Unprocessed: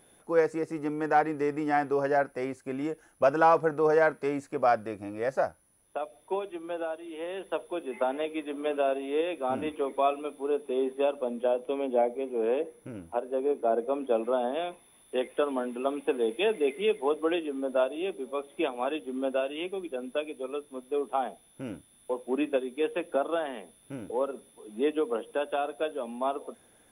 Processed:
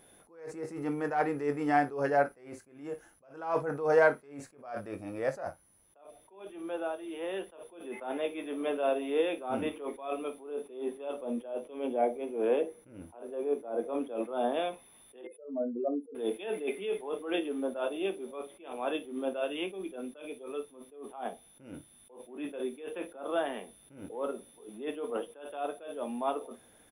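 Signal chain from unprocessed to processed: 15.21–16.15 s: spectral contrast enhancement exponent 3.1; early reflections 21 ms -10.5 dB, 55 ms -17 dB; attacks held to a fixed rise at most 110 dB/s

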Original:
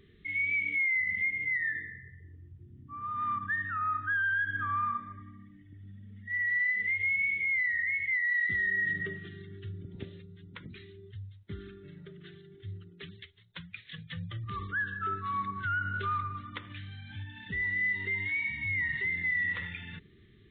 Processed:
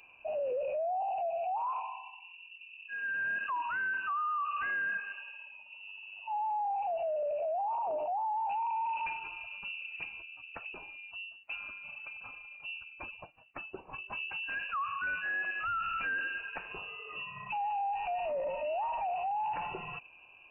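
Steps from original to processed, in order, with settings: high-pass 130 Hz 12 dB/octave; saturation -35 dBFS, distortion -9 dB; frequency inversion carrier 2.8 kHz; trim +4 dB

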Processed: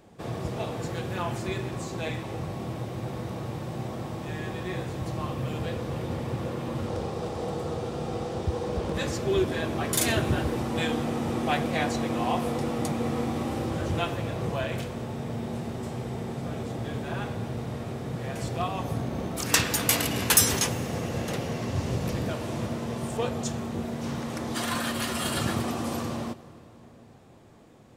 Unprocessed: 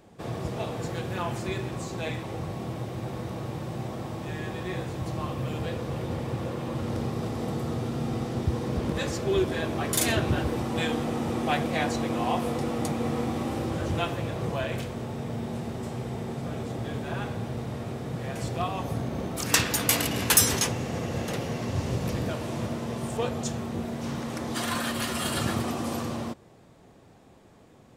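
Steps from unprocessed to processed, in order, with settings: 6.87–8.94 s: graphic EQ with 31 bands 125 Hz -9 dB, 250 Hz -10 dB, 500 Hz +5 dB, 800 Hz +3 dB, 2 kHz -3 dB, 12.5 kHz -10 dB; reverberation RT60 4.3 s, pre-delay 85 ms, DRR 18 dB

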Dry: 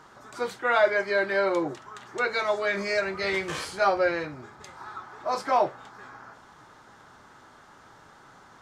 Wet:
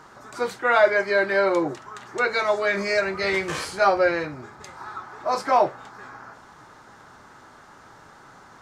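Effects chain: peaking EQ 3.3 kHz -3.5 dB 0.36 oct; trim +4 dB

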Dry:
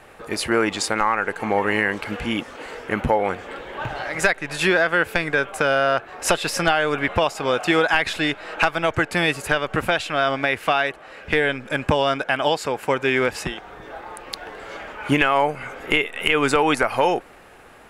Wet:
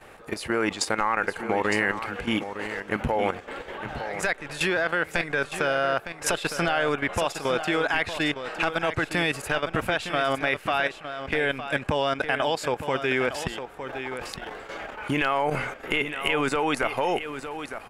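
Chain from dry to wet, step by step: level held to a coarse grid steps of 12 dB; delay 910 ms -10 dB; 13.80–15.70 s: decay stretcher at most 41 dB/s

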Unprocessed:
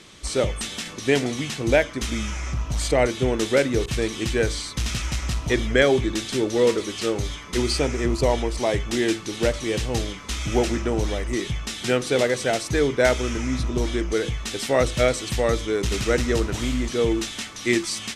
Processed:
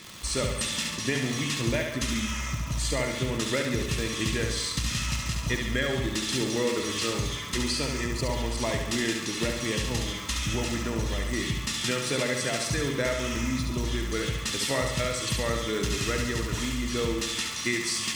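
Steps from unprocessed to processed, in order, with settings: peaking EQ 440 Hz -9.5 dB 1.4 oct; compression, threshold -27 dBFS, peak gain reduction 11 dB; comb of notches 760 Hz; crackle 230 per s -35 dBFS; flutter echo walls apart 11.9 m, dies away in 0.88 s; trim +3 dB

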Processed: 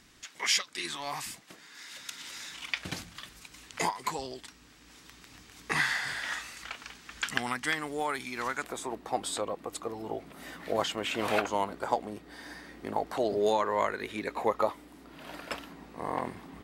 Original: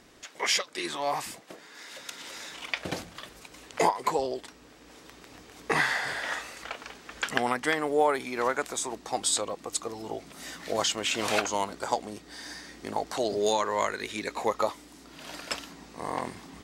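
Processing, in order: peaking EQ 530 Hz -12.5 dB 1.6 oct, from 8.64 s 6.3 kHz

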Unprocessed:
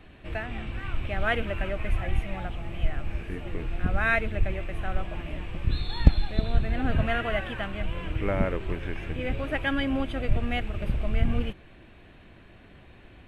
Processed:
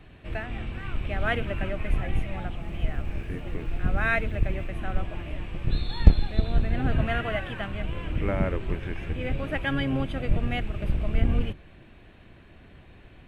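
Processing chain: octave divider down 1 oct, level 0 dB; 2.60–4.67 s: crackle 540 per s -53 dBFS; trim -1 dB

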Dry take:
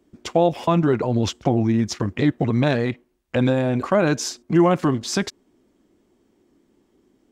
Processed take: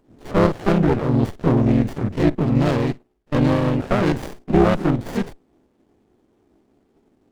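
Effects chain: spectrogram pixelated in time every 50 ms; harmony voices +3 st -2 dB; sliding maximum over 33 samples; trim +1 dB

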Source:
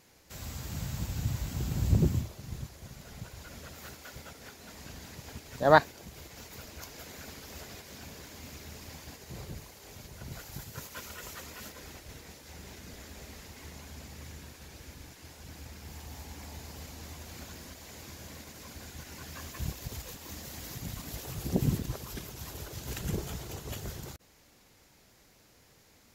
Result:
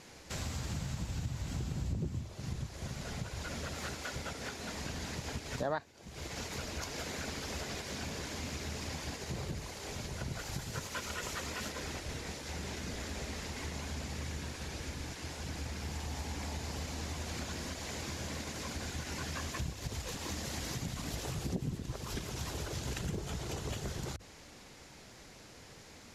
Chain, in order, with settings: Bessel low-pass 8.3 kHz, order 6; hum notches 50/100 Hz; compression 5:1, threshold -44 dBFS, peak gain reduction 26.5 dB; trim +8.5 dB

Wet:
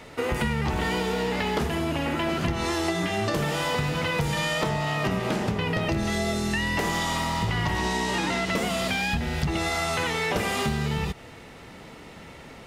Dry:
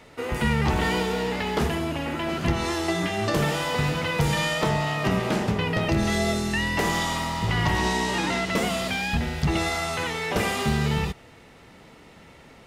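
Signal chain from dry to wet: compression, threshold -28 dBFS, peak gain reduction 9.5 dB; trim +5 dB

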